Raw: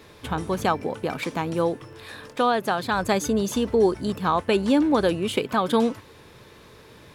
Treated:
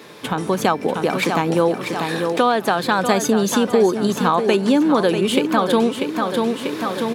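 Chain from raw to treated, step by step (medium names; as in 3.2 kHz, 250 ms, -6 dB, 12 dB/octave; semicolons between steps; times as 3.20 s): on a send: feedback delay 641 ms, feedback 38%, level -9 dB; on the sum: level rider gain up to 12 dB; high-pass 150 Hz 24 dB/octave; compression 2:1, threshold -30 dBFS, peak gain reduction 12.5 dB; trim +8 dB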